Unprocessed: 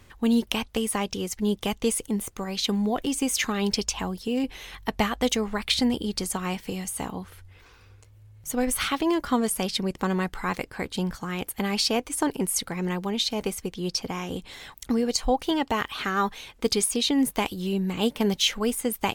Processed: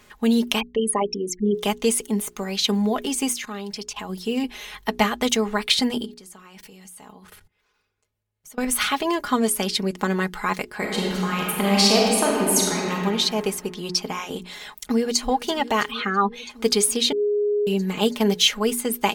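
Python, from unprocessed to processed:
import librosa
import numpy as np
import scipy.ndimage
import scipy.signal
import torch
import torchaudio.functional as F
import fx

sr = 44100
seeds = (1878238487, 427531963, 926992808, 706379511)

y = fx.envelope_sharpen(x, sr, power=3.0, at=(0.59, 1.54), fade=0.02)
y = fx.level_steps(y, sr, step_db=18, at=(3.32, 4.08), fade=0.02)
y = fx.level_steps(y, sr, step_db=24, at=(6.04, 8.64), fade=0.02)
y = fx.reverb_throw(y, sr, start_s=10.78, length_s=2.15, rt60_s=2.2, drr_db=-2.5)
y = fx.echo_throw(y, sr, start_s=14.64, length_s=0.63, ms=330, feedback_pct=85, wet_db=-16.5)
y = fx.spec_expand(y, sr, power=1.6, at=(15.9, 16.49), fade=0.02)
y = fx.edit(y, sr, fx.bleep(start_s=17.12, length_s=0.55, hz=414.0, db=-23.5), tone=tone)
y = fx.low_shelf(y, sr, hz=140.0, db=-11.5)
y = fx.hum_notches(y, sr, base_hz=60, count=7)
y = y + 0.56 * np.pad(y, (int(4.8 * sr / 1000.0), 0))[:len(y)]
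y = y * 10.0 ** (3.5 / 20.0)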